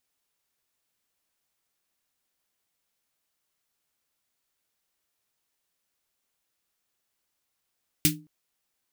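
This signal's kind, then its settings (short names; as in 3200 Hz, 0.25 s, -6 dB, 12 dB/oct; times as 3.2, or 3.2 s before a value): snare drum length 0.22 s, tones 160 Hz, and 300 Hz, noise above 2000 Hz, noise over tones 6 dB, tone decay 0.35 s, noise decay 0.15 s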